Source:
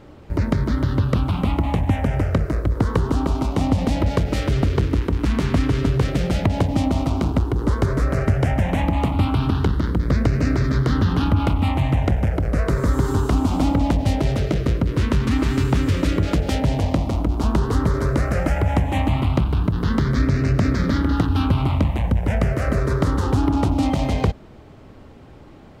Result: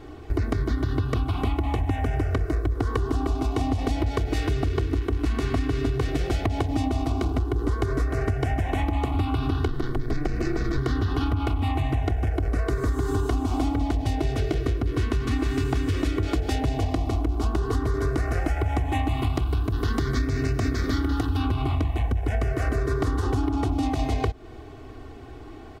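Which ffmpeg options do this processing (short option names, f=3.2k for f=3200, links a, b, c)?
-filter_complex "[0:a]asettb=1/sr,asplit=3[a][b][c];[a]atrim=end=9.684[d];[b]atrim=start=9.68:end=10.78,asetpts=PTS-STARTPTS,afade=t=in:d=0.004:c=qsin,afade=t=out:st=1.096:d=0.004:c=qsin,aeval=exprs='val(0)*sin(2*PI*74*n/s)':c=same[e];[c]atrim=start=10.776[f];[d][e]acrossfade=d=0.004:c1=hsin:c2=qsin[g];[g][f]acrossfade=d=0.004:c1=qsin:c2=hsin,asettb=1/sr,asplit=3[h][i][j];[h]atrim=end=19.094[k];[i]atrim=start=19.09:end=21.37,asetpts=PTS-STARTPTS,afade=t=in:d=0.004:c=qsin,afade=t=out:st=2.276:d=0.004:c=qsin,highshelf=f=5.5k:g=8[l];[j]atrim=start=21.366[m];[k][l]acrossfade=d=0.004:c1=hsin:c2=qsin[n];[n][m]acrossfade=d=0.004:c1=qsin:c2=hsin,aecho=1:1:2.7:0.87,acompressor=threshold=-21dB:ratio=6"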